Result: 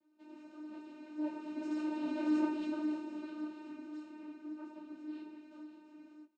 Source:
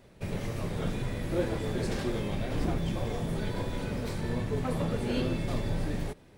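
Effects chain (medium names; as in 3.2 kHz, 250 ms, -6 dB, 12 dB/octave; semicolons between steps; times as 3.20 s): Doppler pass-by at 2.36 s, 39 m/s, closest 13 m; vocoder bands 8, saw 305 Hz; doubling 27 ms -5.5 dB; three-phase chorus; trim +4 dB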